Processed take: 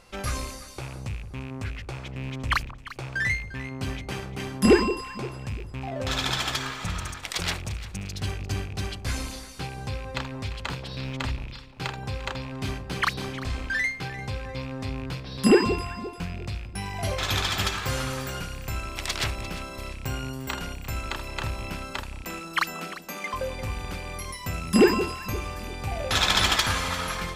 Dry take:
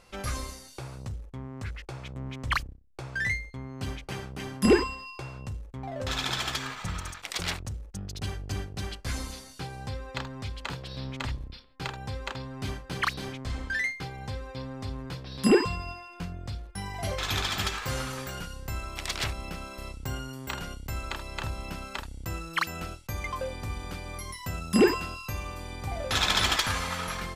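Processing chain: rattle on loud lows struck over -38 dBFS, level -34 dBFS; 22.23–23.34 s: steep high-pass 170 Hz 96 dB/octave; echo whose repeats swap between lows and highs 174 ms, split 910 Hz, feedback 61%, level -11 dB; trim +3 dB

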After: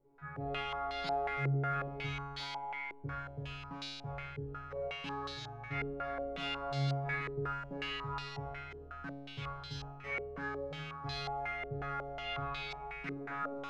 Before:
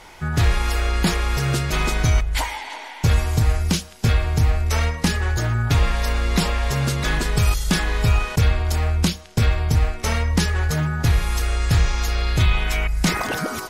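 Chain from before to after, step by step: feedback comb 140 Hz, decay 1.5 s, mix 100%; step-sequenced low-pass 5.5 Hz 400–4100 Hz

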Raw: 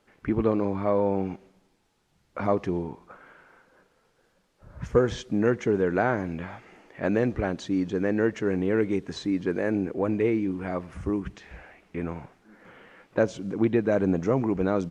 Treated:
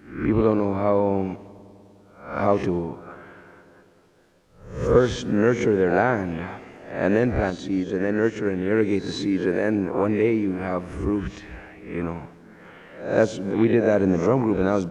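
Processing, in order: reverse spectral sustain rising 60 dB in 0.51 s; filtered feedback delay 100 ms, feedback 83%, low-pass 2.5 kHz, level -22.5 dB; 7.50–8.71 s: upward expansion 1.5:1, over -32 dBFS; trim +3 dB

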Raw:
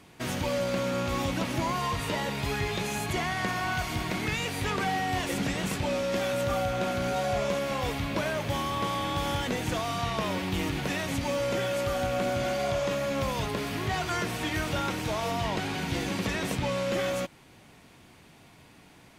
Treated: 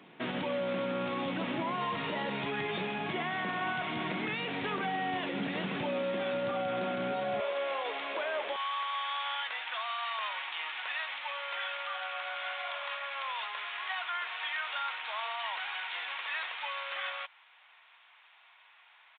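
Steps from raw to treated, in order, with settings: high-pass 170 Hz 24 dB/octave, from 7.40 s 440 Hz, from 8.56 s 950 Hz; peak limiter -25 dBFS, peak gain reduction 8 dB; resampled via 8 kHz

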